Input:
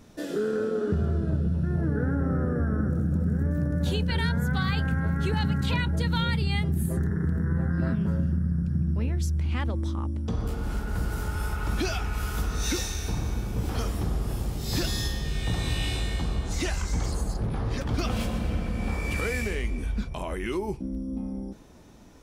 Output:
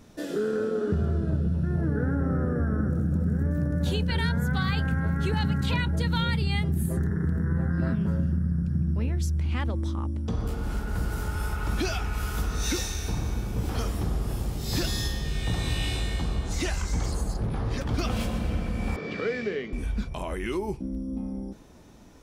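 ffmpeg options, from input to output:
ffmpeg -i in.wav -filter_complex "[0:a]asettb=1/sr,asplit=3[link_01][link_02][link_03];[link_01]atrim=end=18.964[link_04];[link_02]atrim=start=18.96:end=19.73,asetpts=PTS-STARTPTS,afade=type=in:duration=0.004:curve=qsin,afade=type=out:start_time=0.766:duration=0.004:curve=qsin,highpass=frequency=140:width=0.5412,highpass=frequency=140:width=1.3066,equalizer=frequency=430:width_type=q:width=4:gain=6,equalizer=frequency=910:width_type=q:width=4:gain=-9,equalizer=frequency=2500:width_type=q:width=4:gain=-7,lowpass=frequency=4500:width=0.5412,lowpass=frequency=4500:width=1.3066[link_05];[link_03]atrim=start=19.726[link_06];[link_04][link_05]acrossfade=duration=0.004:curve1=hsin:curve2=qsin[link_07];[link_07][link_06]acrossfade=duration=0.004:curve1=qsin:curve2=hsin" out.wav

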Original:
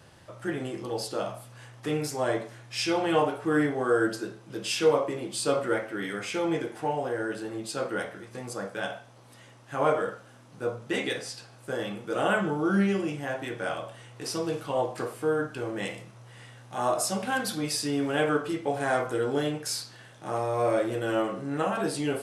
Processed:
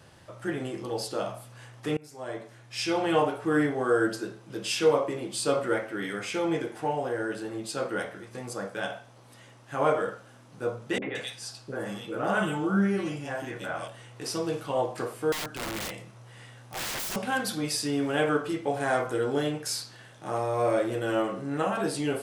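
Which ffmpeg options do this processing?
ffmpeg -i in.wav -filter_complex "[0:a]asettb=1/sr,asplit=3[link_01][link_02][link_03];[link_01]atrim=end=10.984[link_04];[link_02]atrim=start=10.98:end=13.88,asetpts=PTS-STARTPTS,afade=type=in:duration=0.004:curve=qsin,afade=type=out:start_time=2.896:duration=0.004:curve=qsin,acrossover=split=460|2400[link_05][link_06][link_07];[link_06]adelay=40[link_08];[link_07]adelay=170[link_09];[link_05][link_08][link_09]amix=inputs=3:normalize=0,atrim=end_sample=127890[link_10];[link_03]atrim=start=13.876[link_11];[link_04][link_10]acrossfade=duration=0.004:curve1=hsin:curve2=qsin[link_12];[link_12][link_11]acrossfade=duration=0.004:curve1=qsin:curve2=hsin,asettb=1/sr,asplit=3[link_13][link_14][link_15];[link_13]atrim=end=15.324[link_16];[link_14]atrim=start=15.32:end=17.16,asetpts=PTS-STARTPTS,afade=type=in:duration=0.004:curve=qsin,afade=type=out:start_time=1.836:duration=0.004:curve=qsin,aeval=exprs='(mod(26.6*val(0)+1,2)-1)/26.6':channel_layout=same[link_17];[link_15]atrim=start=17.156[link_18];[link_16][link_17]acrossfade=duration=0.004:curve1=hsin:curve2=qsin[link_19];[link_19][link_18]acrossfade=duration=0.004:curve1=qsin:curve2=hsin,asplit=2[link_20][link_21];[link_20]atrim=end=1.97,asetpts=PTS-STARTPTS,afade=type=out:start_time=1.966:duration=0.004:curve=hsin:silence=0.0668344[link_22];[link_21]atrim=start=1.97,asetpts=PTS-STARTPTS,afade=type=in:duration=1.06:silence=0.0668344[link_23];[link_22][link_23]concat=n=2:v=0:a=1" out.wav

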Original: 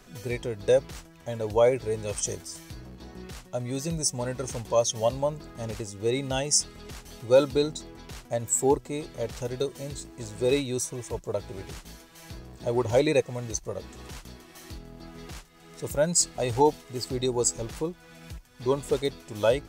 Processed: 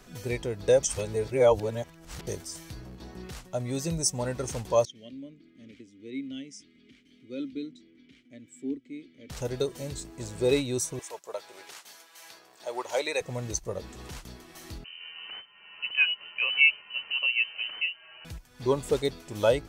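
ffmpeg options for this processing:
ffmpeg -i in.wav -filter_complex "[0:a]asettb=1/sr,asplit=3[link_01][link_02][link_03];[link_01]atrim=end=4.854[link_04];[link_02]atrim=start=4.85:end=9.3,asetpts=PTS-STARTPTS,afade=type=in:duration=0.004:curve=qsin,afade=type=out:start_time=4.446:duration=0.004:curve=qsin,asplit=3[link_05][link_06][link_07];[link_05]bandpass=frequency=270:width_type=q:width=8,volume=0dB[link_08];[link_06]bandpass=frequency=2290:width_type=q:width=8,volume=-6dB[link_09];[link_07]bandpass=frequency=3010:width_type=q:width=8,volume=-9dB[link_10];[link_08][link_09][link_10]amix=inputs=3:normalize=0[link_11];[link_03]atrim=start=9.296[link_12];[link_04][link_11]acrossfade=duration=0.004:curve1=hsin:curve2=qsin[link_13];[link_13][link_12]acrossfade=duration=0.004:curve1=qsin:curve2=hsin,asettb=1/sr,asplit=3[link_14][link_15][link_16];[link_14]atrim=end=10.994[link_17];[link_15]atrim=start=10.99:end=13.21,asetpts=PTS-STARTPTS,afade=type=in:duration=0.004:curve=qsin,afade=type=out:start_time=2.216:duration=0.004:curve=qsin,highpass=750[link_18];[link_16]atrim=start=13.206[link_19];[link_17][link_18]acrossfade=duration=0.004:curve1=hsin:curve2=qsin[link_20];[link_20][link_19]acrossfade=duration=0.004:curve1=qsin:curve2=hsin,asettb=1/sr,asplit=3[link_21][link_22][link_23];[link_21]atrim=end=14.844[link_24];[link_22]atrim=start=14.84:end=18.25,asetpts=PTS-STARTPTS,afade=type=in:duration=0.004:curve=qsin,afade=type=out:start_time=3.406:duration=0.004:curve=qsin,lowpass=frequency=2600:width_type=q:width=0.5098,lowpass=frequency=2600:width_type=q:width=0.6013,lowpass=frequency=2600:width_type=q:width=0.9,lowpass=frequency=2600:width_type=q:width=2.563,afreqshift=-3100[link_25];[link_23]atrim=start=18.246[link_26];[link_24][link_25]acrossfade=duration=0.004:curve1=hsin:curve2=qsin[link_27];[link_27][link_26]acrossfade=duration=0.004:curve1=qsin:curve2=hsin,asplit=3[link_28][link_29][link_30];[link_28]atrim=end=0.832[link_31];[link_29]atrim=start=0.828:end=2.272,asetpts=PTS-STARTPTS,areverse[link_32];[link_30]atrim=start=2.268[link_33];[link_31][link_32]acrossfade=duration=0.004:curve1=hsin:curve2=hsin[link_34];[link_34][link_33]acrossfade=duration=0.004:curve1=hsin:curve2=hsin" out.wav

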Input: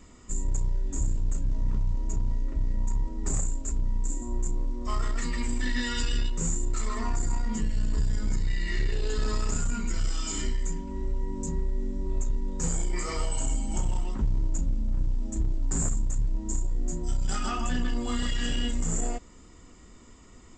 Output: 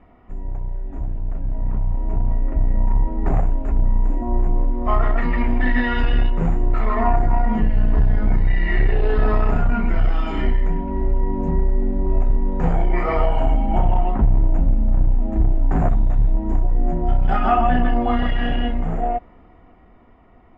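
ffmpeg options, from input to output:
ffmpeg -i in.wav -filter_complex "[0:a]asettb=1/sr,asplit=3[link_01][link_02][link_03];[link_01]atrim=end=15.904[link_04];[link_02]atrim=start=15.9:end=16.33,asetpts=PTS-STARTPTS,afade=type=in:duration=0.004:curve=qsin,afade=type=out:start_time=0.426:duration=0.004:curve=qsin,equalizer=frequency=3700:width_type=o:width=0.22:gain=12.5[link_05];[link_03]atrim=start=16.326[link_06];[link_04][link_05]acrossfade=duration=0.004:curve1=hsin:curve2=qsin[link_07];[link_07][link_06]acrossfade=duration=0.004:curve1=qsin:curve2=hsin,lowpass=frequency=2400:width=0.5412,lowpass=frequency=2400:width=1.3066,equalizer=frequency=720:width_type=o:width=0.44:gain=14.5,dynaudnorm=framelen=130:gausssize=31:maxgain=10.5dB" out.wav

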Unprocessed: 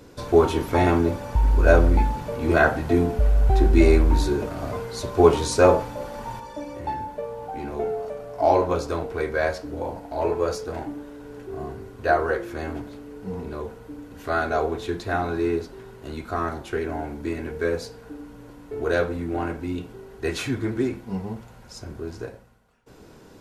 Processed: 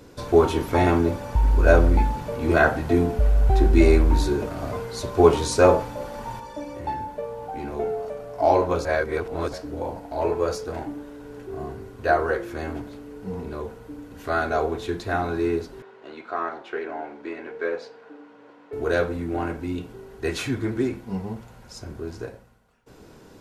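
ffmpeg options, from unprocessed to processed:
ffmpeg -i in.wav -filter_complex "[0:a]asettb=1/sr,asplit=3[link_01][link_02][link_03];[link_01]atrim=end=15.824[link_04];[link_02]atrim=start=15.82:end=18.73,asetpts=PTS-STARTPTS,afade=type=in:duration=0.004:curve=qsin,afade=type=out:start_time=2.906:duration=0.004:curve=qsin,highpass=420,lowpass=3100[link_05];[link_03]atrim=start=18.726[link_06];[link_04][link_05]acrossfade=duration=0.004:curve1=hsin:curve2=qsin[link_07];[link_07][link_06]acrossfade=duration=0.004:curve1=qsin:curve2=hsin,asplit=3[link_08][link_09][link_10];[link_08]atrim=end=8.852[link_11];[link_09]atrim=start=8.848:end=9.532,asetpts=PTS-STARTPTS,areverse[link_12];[link_10]atrim=start=9.528[link_13];[link_11][link_12]acrossfade=duration=0.004:curve1=hsin:curve2=hsin[link_14];[link_14][link_13]acrossfade=duration=0.004:curve1=hsin:curve2=hsin" out.wav

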